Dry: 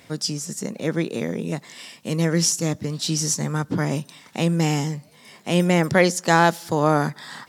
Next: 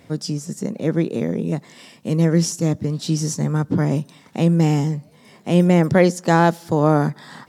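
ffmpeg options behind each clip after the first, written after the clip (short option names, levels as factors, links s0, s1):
-af "tiltshelf=f=890:g=5.5"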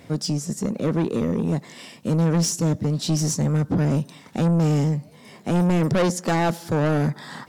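-af "asoftclip=type=tanh:threshold=0.119,volume=1.33"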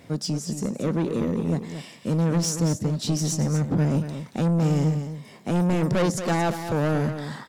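-af "aecho=1:1:229:0.335,volume=0.75"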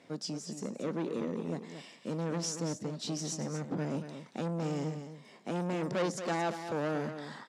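-af "highpass=240,lowpass=7600,volume=0.422"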